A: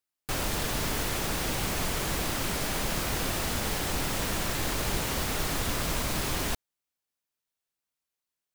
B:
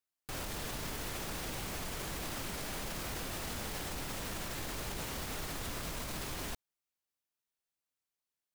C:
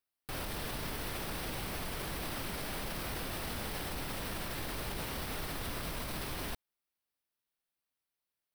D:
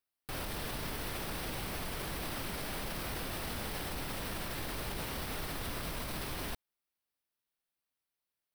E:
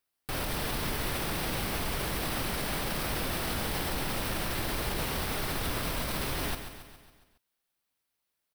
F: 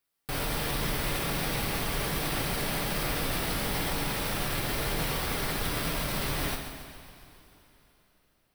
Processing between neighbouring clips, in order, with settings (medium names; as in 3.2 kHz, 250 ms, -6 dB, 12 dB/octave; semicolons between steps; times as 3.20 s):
peak limiter -26 dBFS, peak gain reduction 10.5 dB; trim -4.5 dB
peaking EQ 6.9 kHz -12 dB 0.35 oct; trim +1.5 dB
no audible change
feedback delay 138 ms, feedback 55%, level -9.5 dB; trim +6 dB
two-slope reverb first 0.34 s, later 3.9 s, from -19 dB, DRR 2.5 dB